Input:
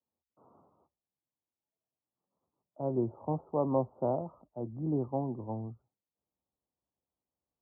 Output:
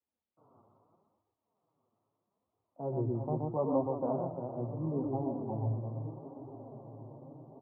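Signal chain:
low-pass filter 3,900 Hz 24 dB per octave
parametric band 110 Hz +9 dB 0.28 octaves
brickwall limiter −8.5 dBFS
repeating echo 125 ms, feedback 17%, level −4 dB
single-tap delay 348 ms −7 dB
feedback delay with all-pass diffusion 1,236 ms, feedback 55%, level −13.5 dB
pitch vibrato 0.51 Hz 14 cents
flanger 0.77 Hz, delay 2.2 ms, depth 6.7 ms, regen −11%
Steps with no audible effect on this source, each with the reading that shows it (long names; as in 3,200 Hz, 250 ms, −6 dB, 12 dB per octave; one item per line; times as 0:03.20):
low-pass filter 3,900 Hz: nothing at its input above 1,200 Hz
brickwall limiter −8.5 dBFS: peak of its input −17.0 dBFS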